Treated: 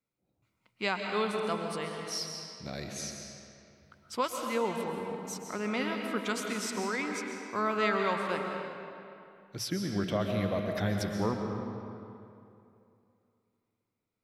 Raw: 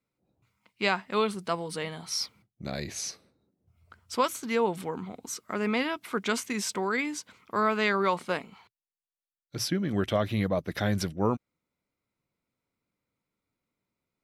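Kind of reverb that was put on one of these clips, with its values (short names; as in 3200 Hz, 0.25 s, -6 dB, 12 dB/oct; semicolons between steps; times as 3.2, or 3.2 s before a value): digital reverb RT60 2.7 s, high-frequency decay 0.7×, pre-delay 90 ms, DRR 2.5 dB; gain -5 dB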